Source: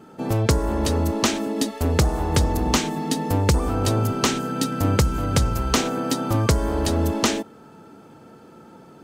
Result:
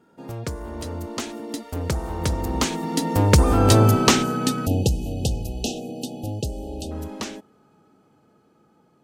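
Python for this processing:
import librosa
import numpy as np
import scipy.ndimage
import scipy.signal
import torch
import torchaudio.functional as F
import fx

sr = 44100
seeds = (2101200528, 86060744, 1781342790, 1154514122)

y = fx.doppler_pass(x, sr, speed_mps=16, closest_m=7.2, pass_at_s=3.76)
y = fx.spec_erase(y, sr, start_s=4.66, length_s=2.25, low_hz=850.0, high_hz=2500.0)
y = F.gain(torch.from_numpy(y), 6.5).numpy()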